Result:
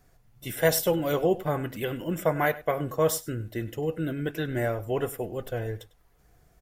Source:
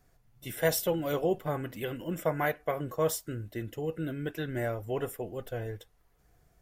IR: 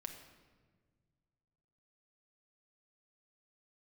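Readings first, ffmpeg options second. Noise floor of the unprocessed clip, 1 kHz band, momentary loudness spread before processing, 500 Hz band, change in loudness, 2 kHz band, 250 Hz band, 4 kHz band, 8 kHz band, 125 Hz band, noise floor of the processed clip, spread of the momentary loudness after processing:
−67 dBFS, +4.5 dB, 9 LU, +4.5 dB, +4.5 dB, +4.5 dB, +4.5 dB, +4.5 dB, +4.5 dB, +4.5 dB, −62 dBFS, 9 LU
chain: -filter_complex "[0:a]asplit=2[link_01][link_02];[link_02]adelay=99.13,volume=-18dB,highshelf=frequency=4000:gain=-2.23[link_03];[link_01][link_03]amix=inputs=2:normalize=0,volume=4.5dB"

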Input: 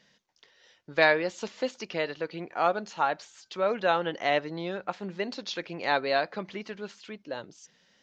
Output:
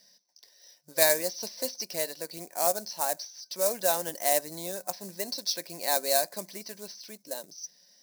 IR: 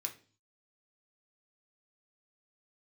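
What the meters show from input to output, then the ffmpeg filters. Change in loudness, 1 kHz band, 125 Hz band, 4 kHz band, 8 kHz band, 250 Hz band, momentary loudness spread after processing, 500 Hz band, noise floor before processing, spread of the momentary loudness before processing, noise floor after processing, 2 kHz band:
+1.0 dB, −4.0 dB, −7.5 dB, +3.0 dB, can't be measured, −7.0 dB, 17 LU, −2.0 dB, −67 dBFS, 15 LU, −64 dBFS, −7.0 dB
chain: -filter_complex "[0:a]superequalizer=8b=2:10b=0.355,afftfilt=real='re*between(b*sr/4096,140,6200)':imag='im*between(b*sr/4096,140,6200)':win_size=4096:overlap=0.75,equalizer=frequency=1100:width=6.4:gain=7.5,asplit=2[link_01][link_02];[link_02]acrusher=bits=3:mode=log:mix=0:aa=0.000001,volume=-4.5dB[link_03];[link_01][link_03]amix=inputs=2:normalize=0,aexciter=amount=14.9:drive=4.5:freq=4700,volume=-11dB"

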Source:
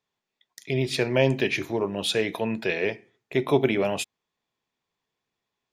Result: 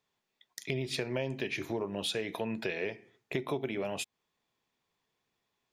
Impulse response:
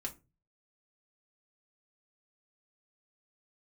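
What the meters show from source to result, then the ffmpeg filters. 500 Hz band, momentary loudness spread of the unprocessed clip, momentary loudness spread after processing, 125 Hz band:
−10.5 dB, 8 LU, 7 LU, −10.5 dB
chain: -af "acompressor=threshold=-33dB:ratio=6,volume=1.5dB"

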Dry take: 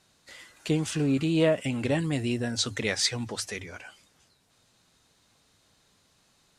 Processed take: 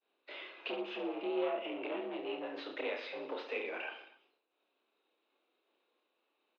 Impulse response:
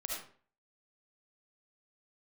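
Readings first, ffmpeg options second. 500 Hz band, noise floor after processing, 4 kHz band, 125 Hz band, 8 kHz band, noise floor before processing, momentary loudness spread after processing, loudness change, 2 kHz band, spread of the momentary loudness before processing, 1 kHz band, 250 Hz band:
−7.5 dB, −82 dBFS, −14.5 dB, below −35 dB, below −40 dB, −66 dBFS, 9 LU, −12.0 dB, −8.0 dB, 13 LU, −2.0 dB, −14.5 dB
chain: -af "agate=range=-33dB:threshold=-54dB:ratio=3:detection=peak,equalizer=frequency=1500:width_type=o:width=1.6:gain=-12.5,aecho=1:1:0.8:0.32,acompressor=threshold=-38dB:ratio=6,afreqshift=-21,asoftclip=type=tanh:threshold=-39.5dB,aecho=1:1:30|69|119.7|185.6|271.3:0.631|0.398|0.251|0.158|0.1,highpass=frequency=300:width_type=q:width=0.5412,highpass=frequency=300:width_type=q:width=1.307,lowpass=frequency=3000:width_type=q:width=0.5176,lowpass=frequency=3000:width_type=q:width=0.7071,lowpass=frequency=3000:width_type=q:width=1.932,afreqshift=68,volume=10.5dB"

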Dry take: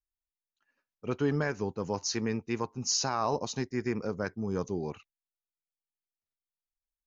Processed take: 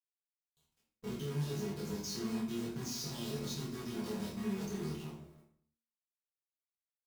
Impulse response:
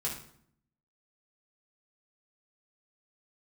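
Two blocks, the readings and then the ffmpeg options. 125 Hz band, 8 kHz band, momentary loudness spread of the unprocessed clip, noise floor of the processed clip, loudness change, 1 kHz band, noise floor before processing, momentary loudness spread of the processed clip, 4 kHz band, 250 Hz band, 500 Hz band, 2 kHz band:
−4.0 dB, can't be measured, 7 LU, below −85 dBFS, −7.5 dB, −15.0 dB, below −85 dBFS, 7 LU, −7.0 dB, −4.5 dB, −9.5 dB, −12.0 dB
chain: -filter_complex "[0:a]alimiter=limit=-24dB:level=0:latency=1:release=152,adynamicequalizer=threshold=0.00224:dfrequency=130:dqfactor=3.7:tfrequency=130:tqfactor=3.7:attack=5:release=100:ratio=0.375:range=2:mode=cutabove:tftype=bell,asuperstop=centerf=2100:order=12:qfactor=3.9,asplit=2[link_01][link_02];[link_02]adelay=159,lowpass=frequency=830:poles=1,volume=-22dB,asplit=2[link_03][link_04];[link_04]adelay=159,lowpass=frequency=830:poles=1,volume=0.4,asplit=2[link_05][link_06];[link_06]adelay=159,lowpass=frequency=830:poles=1,volume=0.4[link_07];[link_01][link_03][link_05][link_07]amix=inputs=4:normalize=0,asoftclip=type=tanh:threshold=-34.5dB,acrossover=split=270|660|1700[link_08][link_09][link_10][link_11];[link_08]acompressor=threshold=-49dB:ratio=4[link_12];[link_09]acompressor=threshold=-54dB:ratio=4[link_13];[link_10]acompressor=threshold=-54dB:ratio=4[link_14];[link_11]acompressor=threshold=-47dB:ratio=4[link_15];[link_12][link_13][link_14][link_15]amix=inputs=4:normalize=0,firequalizer=gain_entry='entry(110,0);entry(180,9);entry(340,7);entry(930,-23);entry(1700,-20);entry(3300,9);entry(5300,4)':delay=0.05:min_phase=1,acompressor=threshold=-47dB:ratio=3,acrusher=bits=9:dc=4:mix=0:aa=0.000001,asplit=2[link_16][link_17];[link_17]adelay=26,volume=-3dB[link_18];[link_16][link_18]amix=inputs=2:normalize=0,bandreject=frequency=45.77:width_type=h:width=4,bandreject=frequency=91.54:width_type=h:width=4,bandreject=frequency=137.31:width_type=h:width=4,bandreject=frequency=183.08:width_type=h:width=4,bandreject=frequency=228.85:width_type=h:width=4,bandreject=frequency=274.62:width_type=h:width=4,bandreject=frequency=320.39:width_type=h:width=4,bandreject=frequency=366.16:width_type=h:width=4,bandreject=frequency=411.93:width_type=h:width=4,bandreject=frequency=457.7:width_type=h:width=4,bandreject=frequency=503.47:width_type=h:width=4,bandreject=frequency=549.24:width_type=h:width=4,bandreject=frequency=595.01:width_type=h:width=4[link_19];[1:a]atrim=start_sample=2205,afade=type=out:start_time=0.39:duration=0.01,atrim=end_sample=17640,asetrate=42777,aresample=44100[link_20];[link_19][link_20]afir=irnorm=-1:irlink=0,volume=1.5dB"

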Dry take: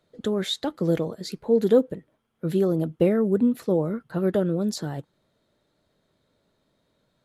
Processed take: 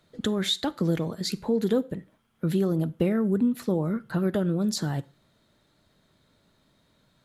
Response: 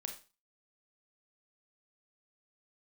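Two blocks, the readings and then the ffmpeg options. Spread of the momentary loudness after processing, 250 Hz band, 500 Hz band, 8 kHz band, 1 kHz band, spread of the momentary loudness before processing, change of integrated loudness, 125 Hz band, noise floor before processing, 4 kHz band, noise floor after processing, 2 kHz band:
7 LU, −1.0 dB, −6.0 dB, +3.0 dB, −0.5 dB, 13 LU, −2.5 dB, +0.5 dB, −72 dBFS, +2.5 dB, −67 dBFS, +1.5 dB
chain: -filter_complex "[0:a]equalizer=frequency=490:width_type=o:width=1.2:gain=-7,acompressor=threshold=-33dB:ratio=2,asplit=2[link_01][link_02];[1:a]atrim=start_sample=2205,asetrate=38367,aresample=44100[link_03];[link_02][link_03]afir=irnorm=-1:irlink=0,volume=-13dB[link_04];[link_01][link_04]amix=inputs=2:normalize=0,volume=5.5dB"

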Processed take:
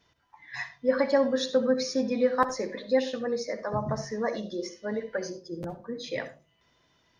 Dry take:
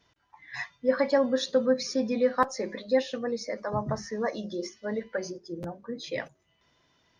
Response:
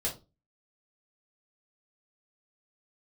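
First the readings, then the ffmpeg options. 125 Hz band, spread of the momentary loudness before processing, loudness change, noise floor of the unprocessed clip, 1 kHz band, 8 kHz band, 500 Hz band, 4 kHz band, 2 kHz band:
+0.5 dB, 13 LU, +0.5 dB, −71 dBFS, 0.0 dB, can't be measured, +0.5 dB, +0.5 dB, +0.5 dB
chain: -filter_complex "[0:a]asplit=2[link_01][link_02];[1:a]atrim=start_sample=2205,adelay=59[link_03];[link_02][link_03]afir=irnorm=-1:irlink=0,volume=-16dB[link_04];[link_01][link_04]amix=inputs=2:normalize=0"

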